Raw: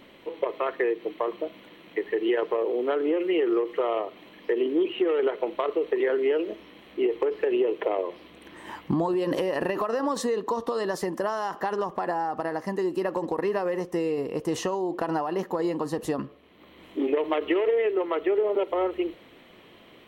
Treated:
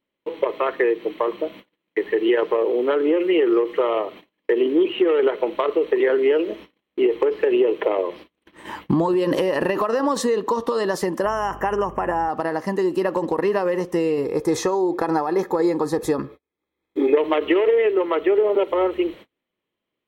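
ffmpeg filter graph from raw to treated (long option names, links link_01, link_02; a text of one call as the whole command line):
ffmpeg -i in.wav -filter_complex "[0:a]asettb=1/sr,asplit=3[link_01][link_02][link_03];[link_01]atrim=end=11.254[link_04];[link_02]atrim=start=11.25:end=12.29,asetpts=PTS-STARTPTS,afade=type=in:duration=0.004:curve=qsin,afade=type=out:start_time=1.036:duration=0.004:curve=qsin,asuperstop=centerf=4100:order=20:qfactor=1.9,aeval=exprs='val(0)+0.00501*(sin(2*PI*50*n/s)+sin(2*PI*2*50*n/s)/2+sin(2*PI*3*50*n/s)/3+sin(2*PI*4*50*n/s)/4+sin(2*PI*5*50*n/s)/5)':channel_layout=same[link_05];[link_03]atrim=start=12.286[link_06];[link_04][link_05]acrossfade=duration=0.004:curve1=hsin:curve2=qsin[link_07];[link_07][link_06]acrossfade=duration=0.004:curve1=qsin:curve2=hsin,asettb=1/sr,asplit=3[link_08][link_09][link_10];[link_08]atrim=end=14.244[link_11];[link_09]atrim=start=14.24:end=17.17,asetpts=PTS-STARTPTS,afade=type=in:duration=0.004:curve=qsin,afade=type=out:start_time=2.926:duration=0.004:curve=qsin,asuperstop=centerf=2900:order=4:qfactor=5.5,aecho=1:1:2.4:0.38,atrim=end_sample=129213[link_12];[link_10]atrim=start=17.166[link_13];[link_11][link_12]acrossfade=duration=0.004:curve1=hsin:curve2=qsin[link_14];[link_14][link_13]acrossfade=duration=0.004:curve1=qsin:curve2=hsin,agate=range=-36dB:threshold=-44dB:ratio=16:detection=peak,bandreject=frequency=710:width=12,volume=6dB" out.wav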